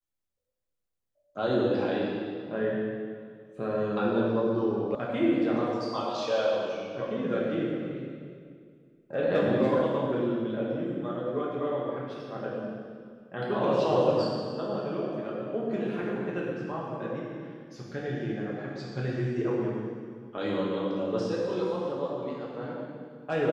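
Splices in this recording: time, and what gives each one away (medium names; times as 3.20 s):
4.95 s: sound stops dead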